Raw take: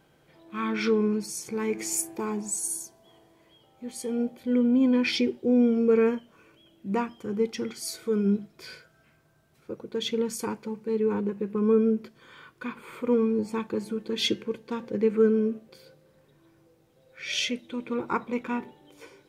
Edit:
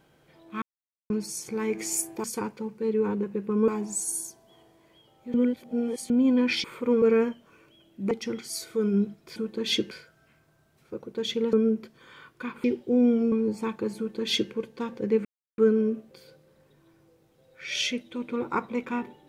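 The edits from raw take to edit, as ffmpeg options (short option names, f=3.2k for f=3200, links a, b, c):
-filter_complex "[0:a]asplit=16[a][b][c][d][e][f][g][h][i][j][k][l][m][n][o][p];[a]atrim=end=0.62,asetpts=PTS-STARTPTS,afade=t=out:st=0.616:d=0.004:c=hsin[q];[b]atrim=start=0.62:end=1.1,asetpts=PTS-STARTPTS,volume=0[r];[c]atrim=start=1.1:end=2.242,asetpts=PTS-STARTPTS,afade=t=in:d=0.004:c=hsin[s];[d]atrim=start=10.298:end=11.742[t];[e]atrim=start=2.238:end=3.902[u];[f]atrim=start=3.898:end=4.662,asetpts=PTS-STARTPTS,areverse[v];[g]atrim=start=4.658:end=5.202[w];[h]atrim=start=12.848:end=13.232[x];[i]atrim=start=5.878:end=6.972[y];[j]atrim=start=7.428:end=8.682[z];[k]atrim=start=13.878:end=14.432[aa];[l]atrim=start=8.678:end=10.302[ab];[m]atrim=start=11.738:end=12.852[ac];[n]atrim=start=5.198:end=5.882[ad];[o]atrim=start=13.228:end=15.16,asetpts=PTS-STARTPTS,afade=t=out:st=1.928:d=0.004:c=hsin,apad=pad_dur=0.33[ae];[p]atrim=start=15.16,asetpts=PTS-STARTPTS,afade=t=in:d=0.004:c=hsin[af];[q][r][s]concat=n=3:v=0:a=1[ag];[ag][t]acrossfade=d=0.004:c1=hsin:c2=hsin[ah];[ah][u]acrossfade=d=0.004:c1=hsin:c2=hsin[ai];[ai][v]acrossfade=d=0.004:c1=hsin:c2=hsin[aj];[aj][w]acrossfade=d=0.004:c1=hsin:c2=hsin[ak];[ak][x]acrossfade=d=0.004:c1=hsin:c2=hsin[al];[al][y]acrossfade=d=0.004:c1=hsin:c2=hsin[am];[am][z]acrossfade=d=0.004:c1=hsin:c2=hsin[an];[an][aa]acrossfade=d=0.004:c1=hsin:c2=hsin[ao];[ao][ab]acrossfade=d=0.004:c1=hsin:c2=hsin[ap];[ap][ac]acrossfade=d=0.004:c1=hsin:c2=hsin[aq];[aq][ad]acrossfade=d=0.004:c1=hsin:c2=hsin[ar];[ae][af]concat=n=2:v=0:a=1[as];[ar][as]acrossfade=d=0.004:c1=hsin:c2=hsin"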